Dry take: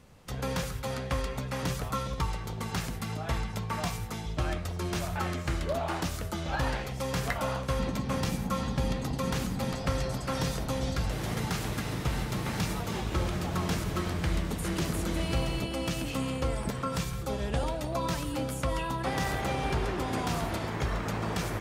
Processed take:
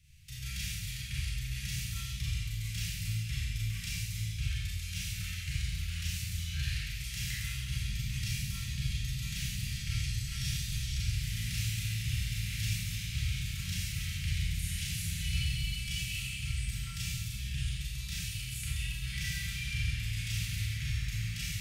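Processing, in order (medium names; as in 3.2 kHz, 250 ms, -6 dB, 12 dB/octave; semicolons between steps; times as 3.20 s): elliptic band-stop 130–2300 Hz, stop band 50 dB; Schroeder reverb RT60 1.2 s, combs from 28 ms, DRR -7 dB; trim -5.5 dB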